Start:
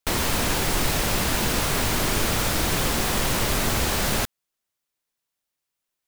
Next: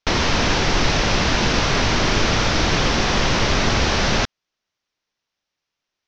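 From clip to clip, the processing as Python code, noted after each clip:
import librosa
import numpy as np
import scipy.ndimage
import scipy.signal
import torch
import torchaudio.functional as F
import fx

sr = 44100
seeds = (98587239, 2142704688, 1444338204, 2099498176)

y = scipy.signal.sosfilt(scipy.signal.ellip(4, 1.0, 50, 5900.0, 'lowpass', fs=sr, output='sos'), x)
y = y * librosa.db_to_amplitude(6.5)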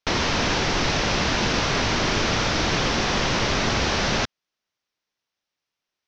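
y = fx.low_shelf(x, sr, hz=60.0, db=-7.5)
y = y * librosa.db_to_amplitude(-3.0)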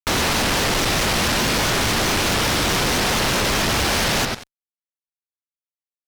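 y = fx.echo_bbd(x, sr, ms=92, stages=4096, feedback_pct=35, wet_db=-16.0)
y = fx.fuzz(y, sr, gain_db=37.0, gate_db=-46.0)
y = fx.vibrato_shape(y, sr, shape='saw_up', rate_hz=4.7, depth_cents=160.0)
y = y * librosa.db_to_amplitude(-5.5)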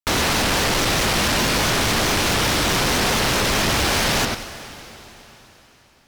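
y = fx.rev_plate(x, sr, seeds[0], rt60_s=4.2, hf_ratio=0.95, predelay_ms=0, drr_db=11.5)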